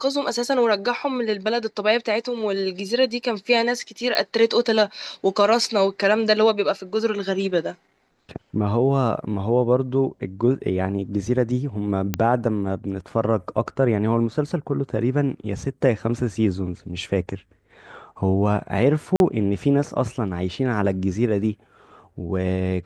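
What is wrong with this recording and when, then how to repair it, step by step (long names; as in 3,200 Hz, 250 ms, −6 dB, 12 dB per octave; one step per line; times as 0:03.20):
0:04.15: click −9 dBFS
0:12.14: click −7 dBFS
0:19.16–0:19.20: drop-out 41 ms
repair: click removal
repair the gap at 0:19.16, 41 ms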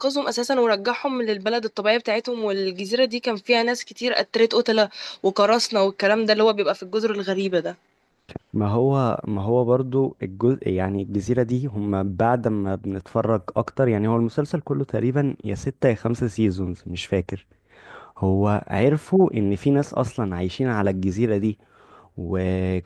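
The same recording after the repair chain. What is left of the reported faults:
none of them is left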